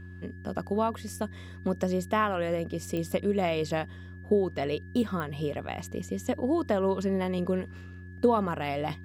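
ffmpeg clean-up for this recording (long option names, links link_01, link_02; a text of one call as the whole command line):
ffmpeg -i in.wav -af "adeclick=threshold=4,bandreject=frequency=90.4:width_type=h:width=4,bandreject=frequency=180.8:width_type=h:width=4,bandreject=frequency=271.2:width_type=h:width=4,bandreject=frequency=361.6:width_type=h:width=4,bandreject=frequency=1700:width=30" out.wav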